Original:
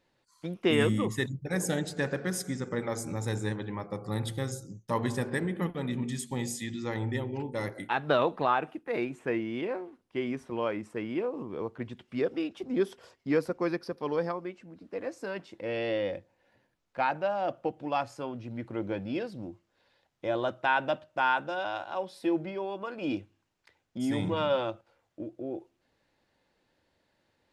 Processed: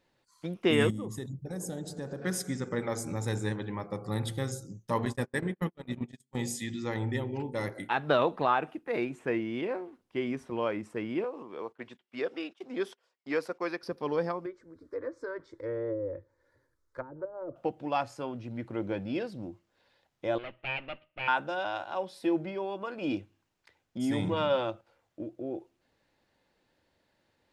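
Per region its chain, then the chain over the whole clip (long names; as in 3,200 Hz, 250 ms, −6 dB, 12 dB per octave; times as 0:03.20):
0:00.90–0:02.22: parametric band 2,200 Hz −15 dB 1.3 octaves + downward compressor 3 to 1, threshold −35 dBFS
0:05.05–0:06.35: hum removal 67.11 Hz, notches 6 + noise gate −32 dBFS, range −40 dB
0:11.24–0:13.83: noise gate −47 dBFS, range −19 dB + meter weighting curve A
0:14.46–0:17.56: treble cut that deepens with the level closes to 330 Hz, closed at −25 dBFS + low-shelf EQ 130 Hz +8 dB + phaser with its sweep stopped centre 740 Hz, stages 6
0:20.38–0:21.28: lower of the sound and its delayed copy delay 0.39 ms + transistor ladder low-pass 3,100 Hz, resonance 65%
whole clip: no processing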